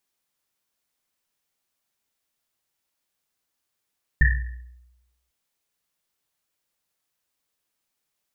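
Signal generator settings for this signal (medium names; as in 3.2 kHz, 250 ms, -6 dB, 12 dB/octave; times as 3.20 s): Risset drum, pitch 61 Hz, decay 1.02 s, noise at 1.8 kHz, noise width 170 Hz, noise 35%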